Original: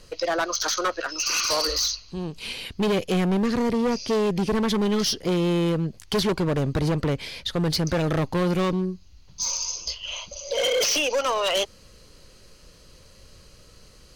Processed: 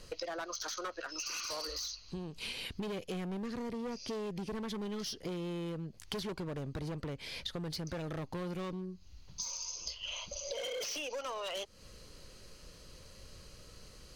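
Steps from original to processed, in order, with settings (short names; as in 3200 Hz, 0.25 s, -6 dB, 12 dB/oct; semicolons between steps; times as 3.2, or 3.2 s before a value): compressor 16:1, threshold -34 dBFS, peak gain reduction 14 dB; gain -3 dB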